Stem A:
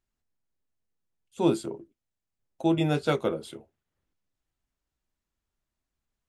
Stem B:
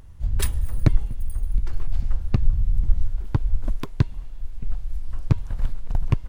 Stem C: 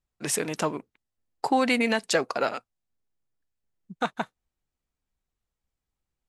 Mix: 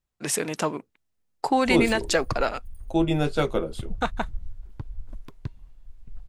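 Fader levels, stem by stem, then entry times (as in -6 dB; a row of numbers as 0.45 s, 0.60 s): +1.5 dB, -14.5 dB, +1.0 dB; 0.30 s, 1.45 s, 0.00 s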